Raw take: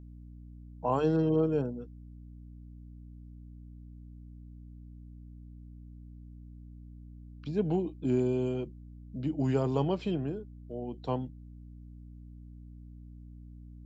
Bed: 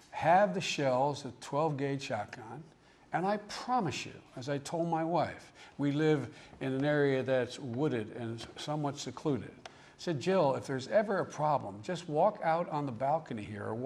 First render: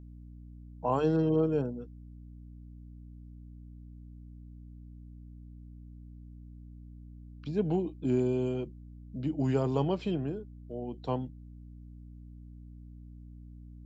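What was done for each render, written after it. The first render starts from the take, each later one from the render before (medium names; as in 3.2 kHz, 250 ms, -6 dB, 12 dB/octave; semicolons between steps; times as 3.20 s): no audible change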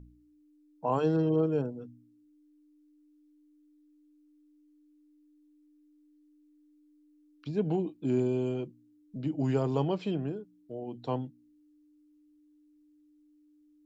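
de-hum 60 Hz, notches 4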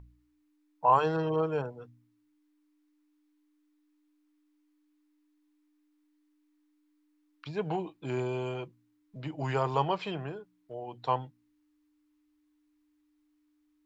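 graphic EQ 250/1000/2000/4000 Hz -12/+10/+7/+3 dB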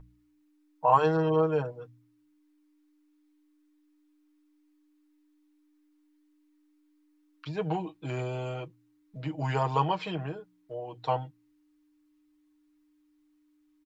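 comb 6.4 ms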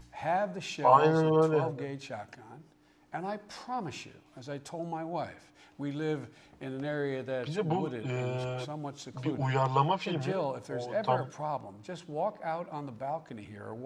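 add bed -4.5 dB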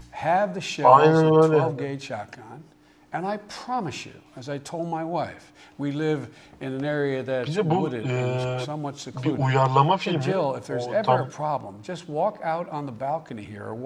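trim +8 dB; peak limiter -2 dBFS, peak gain reduction 2 dB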